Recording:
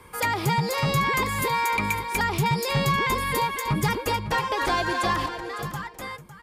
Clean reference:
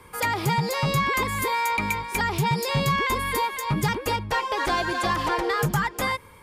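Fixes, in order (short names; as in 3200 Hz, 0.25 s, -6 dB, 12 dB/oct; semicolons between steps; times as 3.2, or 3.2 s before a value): inverse comb 0.555 s -12.5 dB; gain correction +10 dB, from 5.26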